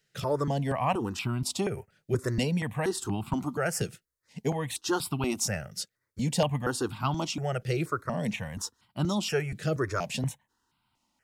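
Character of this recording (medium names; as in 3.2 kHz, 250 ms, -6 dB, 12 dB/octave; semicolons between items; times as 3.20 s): notches that jump at a steady rate 4.2 Hz 260–1800 Hz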